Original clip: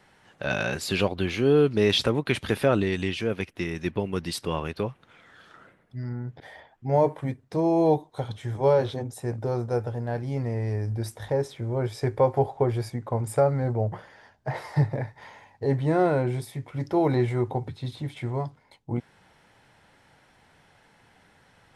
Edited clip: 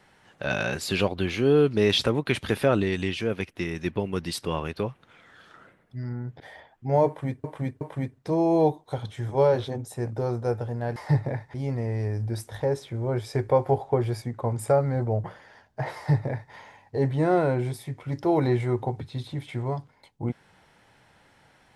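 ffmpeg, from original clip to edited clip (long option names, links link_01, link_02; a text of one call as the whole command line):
ffmpeg -i in.wav -filter_complex "[0:a]asplit=5[link_01][link_02][link_03][link_04][link_05];[link_01]atrim=end=7.442[link_06];[link_02]atrim=start=7.068:end=7.442[link_07];[link_03]atrim=start=7.068:end=10.222[link_08];[link_04]atrim=start=14.628:end=15.212[link_09];[link_05]atrim=start=10.218[link_10];[link_06][link_07]acrossfade=duration=0.004:curve1=hsin:curve2=hsin[link_11];[link_11][link_08]acrossfade=duration=0.004:curve1=hsin:curve2=hsin[link_12];[link_12][link_09]acrossfade=duration=0.004:curve1=hsin:curve2=hsin[link_13];[link_13][link_10]acrossfade=duration=0.004:curve1=hsin:curve2=hsin" out.wav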